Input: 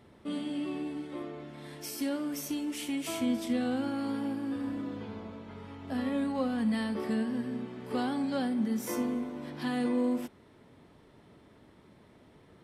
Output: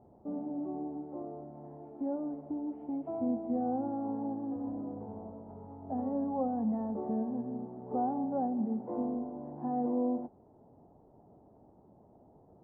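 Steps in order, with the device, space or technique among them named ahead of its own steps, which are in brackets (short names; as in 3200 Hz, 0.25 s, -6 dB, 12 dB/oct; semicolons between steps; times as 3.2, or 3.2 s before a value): under water (LPF 820 Hz 24 dB/oct; bell 770 Hz +11 dB 0.53 oct); gain -3 dB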